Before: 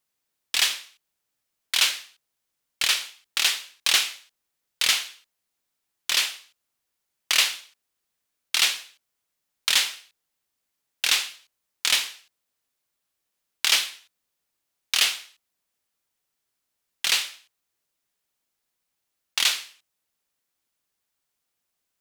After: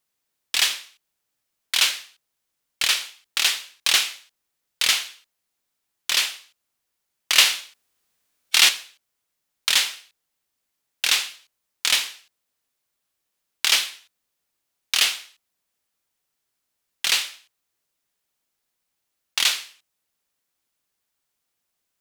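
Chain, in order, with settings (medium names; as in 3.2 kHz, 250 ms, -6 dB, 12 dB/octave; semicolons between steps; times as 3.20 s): 7.37–8.69 s: harmonic-percussive split harmonic +9 dB; trim +1.5 dB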